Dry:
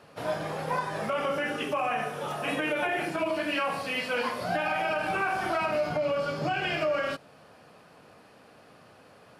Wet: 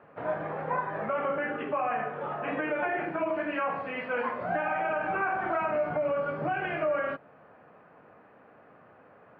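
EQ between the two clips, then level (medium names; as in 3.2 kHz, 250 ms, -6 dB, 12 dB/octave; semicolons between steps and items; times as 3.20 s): low-pass 2 kHz 24 dB/octave; bass shelf 150 Hz -7 dB; 0.0 dB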